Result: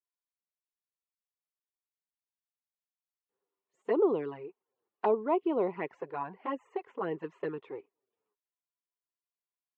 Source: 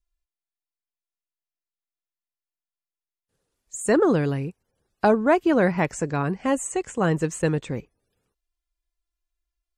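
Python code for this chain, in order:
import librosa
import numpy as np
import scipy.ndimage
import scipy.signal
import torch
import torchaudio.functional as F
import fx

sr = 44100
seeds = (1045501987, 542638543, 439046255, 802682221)

y = fx.env_flanger(x, sr, rest_ms=10.0, full_db=-16.0)
y = fx.cabinet(y, sr, low_hz=390.0, low_slope=12, high_hz=2700.0, hz=(400.0, 590.0, 1000.0, 1600.0, 2400.0), db=(8, -4, 7, -7, -4))
y = F.gain(torch.from_numpy(y), -7.0).numpy()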